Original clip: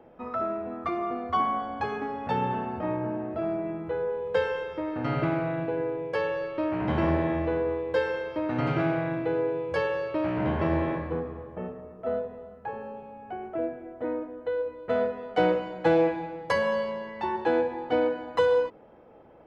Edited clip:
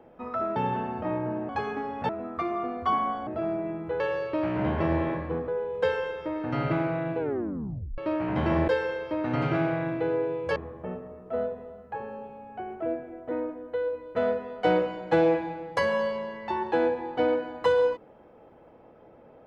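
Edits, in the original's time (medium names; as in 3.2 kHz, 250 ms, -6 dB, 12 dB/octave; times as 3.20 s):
0.56–1.74 s: swap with 2.34–3.27 s
5.71 s: tape stop 0.79 s
7.20–7.93 s: delete
9.81–11.29 s: move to 4.00 s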